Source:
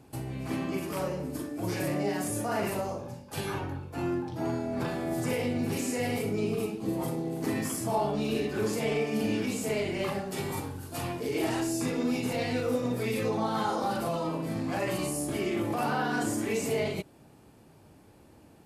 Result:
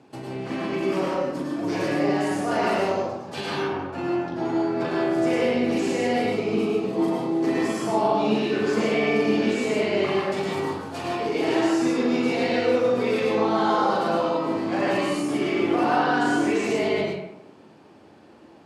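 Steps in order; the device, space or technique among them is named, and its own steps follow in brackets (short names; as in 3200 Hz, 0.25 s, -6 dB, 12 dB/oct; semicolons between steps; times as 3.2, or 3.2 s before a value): supermarket ceiling speaker (BPF 200–5000 Hz; reverb RT60 0.85 s, pre-delay 98 ms, DRR -2 dB); 2.5–3.68 dynamic EQ 4100 Hz, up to +4 dB, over -48 dBFS, Q 1; gain +4 dB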